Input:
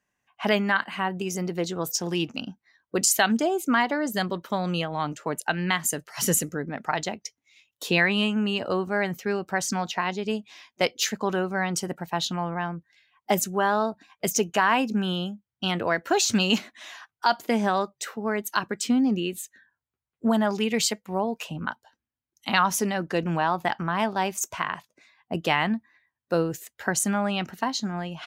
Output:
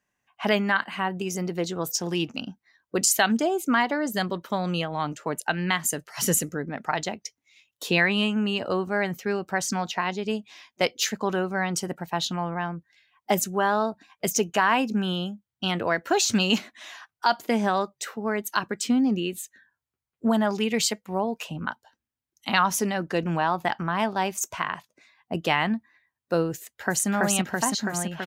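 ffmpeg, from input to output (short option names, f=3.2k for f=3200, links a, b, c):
-filter_complex "[0:a]asplit=2[a][b];[b]afade=t=in:st=26.57:d=0.01,afade=t=out:st=27.08:d=0.01,aecho=0:1:330|660|990|1320|1650|1980|2310|2640|2970|3300|3630|3960:0.944061|0.708046|0.531034|0.398276|0.298707|0.22403|0.168023|0.126017|0.0945127|0.0708845|0.0531634|0.0398725[c];[a][c]amix=inputs=2:normalize=0"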